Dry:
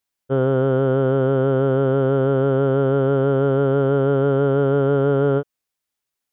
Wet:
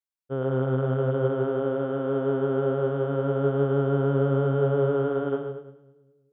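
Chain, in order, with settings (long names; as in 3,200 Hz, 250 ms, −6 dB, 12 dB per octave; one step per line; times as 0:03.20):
echo with a time of its own for lows and highs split 400 Hz, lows 181 ms, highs 106 ms, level −4 dB
expander for the loud parts 1.5 to 1, over −33 dBFS
level −7 dB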